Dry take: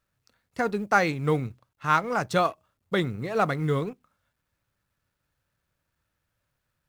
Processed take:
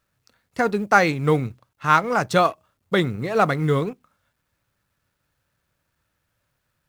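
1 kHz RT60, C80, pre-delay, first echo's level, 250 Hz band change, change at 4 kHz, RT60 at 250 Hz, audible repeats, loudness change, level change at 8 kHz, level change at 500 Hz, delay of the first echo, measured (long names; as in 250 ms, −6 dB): no reverb audible, no reverb audible, no reverb audible, no echo audible, +5.0 dB, +5.5 dB, no reverb audible, no echo audible, +5.5 dB, +5.5 dB, +5.5 dB, no echo audible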